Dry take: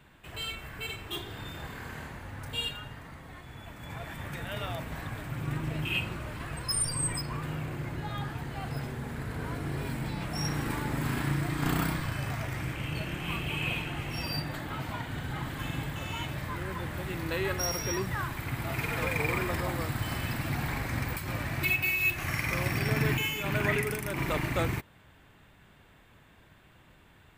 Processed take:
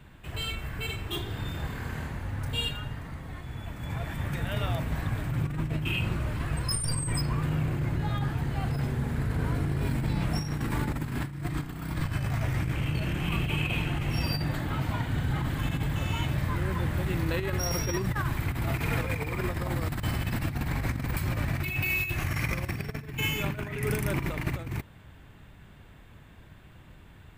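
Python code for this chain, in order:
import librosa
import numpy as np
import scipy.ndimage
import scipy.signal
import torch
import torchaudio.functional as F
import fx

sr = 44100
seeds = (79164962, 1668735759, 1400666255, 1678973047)

y = fx.low_shelf(x, sr, hz=210.0, db=9.5)
y = fx.over_compress(y, sr, threshold_db=-28.0, ratio=-0.5)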